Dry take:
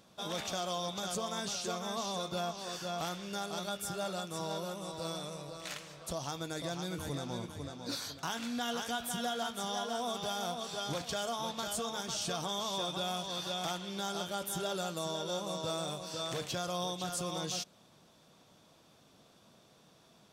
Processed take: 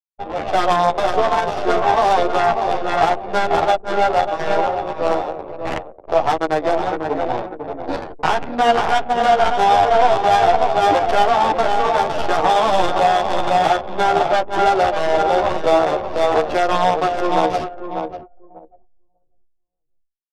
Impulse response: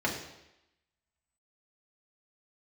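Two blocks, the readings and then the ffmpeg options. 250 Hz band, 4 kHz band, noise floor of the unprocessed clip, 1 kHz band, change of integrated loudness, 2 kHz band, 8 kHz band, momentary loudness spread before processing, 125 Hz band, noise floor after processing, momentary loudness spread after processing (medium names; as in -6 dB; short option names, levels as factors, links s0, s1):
+13.5 dB, +8.5 dB, -63 dBFS, +24.5 dB, +19.5 dB, +20.0 dB, +1.0 dB, 4 LU, +10.0 dB, -62 dBFS, 12 LU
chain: -filter_complex "[0:a]highpass=f=320:w=0.5412,highpass=f=320:w=1.3066,equalizer=f=530:t=q:w=4:g=-7,equalizer=f=800:t=q:w=4:g=8,equalizer=f=1900:t=q:w=4:g=5,equalizer=f=2700:t=q:w=4:g=6,equalizer=f=5000:t=q:w=4:g=4,lowpass=f=8000:w=0.5412,lowpass=f=8000:w=1.3066,aeval=exprs='0.112*(cos(1*acos(clip(val(0)/0.112,-1,1)))-cos(1*PI/2))+0.01*(cos(6*acos(clip(val(0)/0.112,-1,1)))-cos(6*PI/2))':c=same,dynaudnorm=f=160:g=5:m=2.24,aeval=exprs='sgn(val(0))*max(abs(val(0))-0.00944,0)':c=same,equalizer=f=550:t=o:w=1.1:g=5,aecho=1:1:593|1186|1779|2372:0.422|0.135|0.0432|0.0138,adynamicsmooth=sensitivity=1:basefreq=600,anlmdn=0.01,alimiter=level_in=9.44:limit=0.891:release=50:level=0:latency=1,asplit=2[s0][s1];[s1]adelay=11.4,afreqshift=-1.8[s2];[s0][s2]amix=inputs=2:normalize=1,volume=0.891"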